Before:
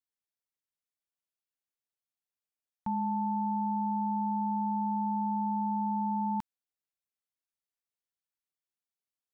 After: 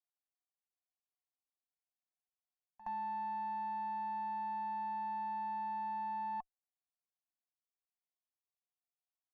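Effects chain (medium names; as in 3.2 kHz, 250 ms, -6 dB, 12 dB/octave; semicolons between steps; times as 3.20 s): cascade formant filter a; Chebyshev shaper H 2 -17 dB, 3 -29 dB, 4 -42 dB, 7 -37 dB, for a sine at -37.5 dBFS; pre-echo 69 ms -17 dB; trim +5.5 dB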